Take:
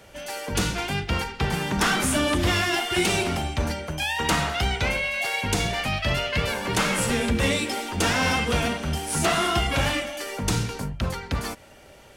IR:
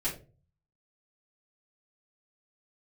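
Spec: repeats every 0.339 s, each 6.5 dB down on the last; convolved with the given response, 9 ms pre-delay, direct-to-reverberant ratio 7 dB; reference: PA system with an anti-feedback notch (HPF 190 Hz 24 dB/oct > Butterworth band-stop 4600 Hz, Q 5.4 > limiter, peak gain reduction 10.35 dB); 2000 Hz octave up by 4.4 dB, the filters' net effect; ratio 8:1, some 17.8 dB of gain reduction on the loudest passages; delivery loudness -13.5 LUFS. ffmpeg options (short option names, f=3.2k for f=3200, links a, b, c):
-filter_complex "[0:a]equalizer=f=2k:t=o:g=5.5,acompressor=threshold=-36dB:ratio=8,aecho=1:1:339|678|1017|1356|1695|2034:0.473|0.222|0.105|0.0491|0.0231|0.0109,asplit=2[a][b];[1:a]atrim=start_sample=2205,adelay=9[c];[b][c]afir=irnorm=-1:irlink=0,volume=-12dB[d];[a][d]amix=inputs=2:normalize=0,highpass=f=190:w=0.5412,highpass=f=190:w=1.3066,asuperstop=centerf=4600:order=8:qfactor=5.4,volume=26dB,alimiter=limit=-5.5dB:level=0:latency=1"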